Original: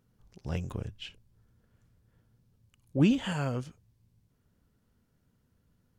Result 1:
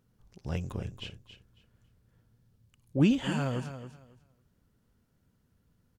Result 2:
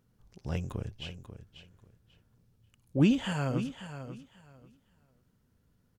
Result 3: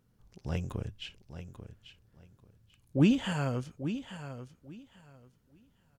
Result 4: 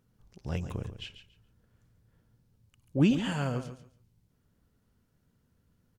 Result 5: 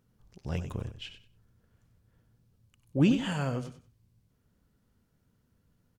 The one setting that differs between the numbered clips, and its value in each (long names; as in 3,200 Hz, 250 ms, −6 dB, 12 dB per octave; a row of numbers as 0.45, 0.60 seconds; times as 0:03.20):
repeating echo, delay time: 275, 540, 840, 140, 94 milliseconds